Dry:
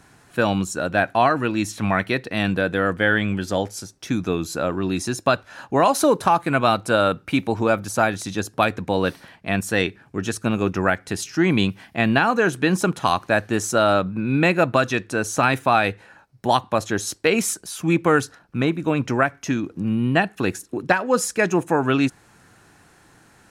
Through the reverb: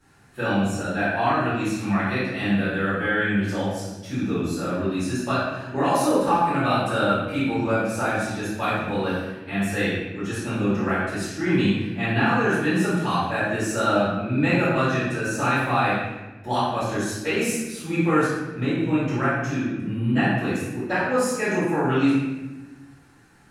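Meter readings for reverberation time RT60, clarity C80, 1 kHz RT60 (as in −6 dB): 1.1 s, 1.5 dB, 1.0 s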